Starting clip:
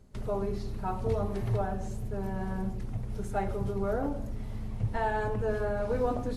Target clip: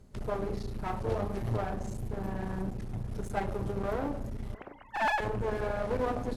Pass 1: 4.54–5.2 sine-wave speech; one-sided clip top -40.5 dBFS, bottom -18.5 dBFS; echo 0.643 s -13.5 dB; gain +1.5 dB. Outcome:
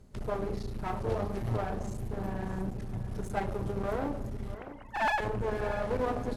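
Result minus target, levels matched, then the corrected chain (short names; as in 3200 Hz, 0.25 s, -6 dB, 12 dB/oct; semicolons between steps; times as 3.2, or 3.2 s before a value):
echo-to-direct +8.5 dB
4.54–5.2 sine-wave speech; one-sided clip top -40.5 dBFS, bottom -18.5 dBFS; echo 0.643 s -22 dB; gain +1.5 dB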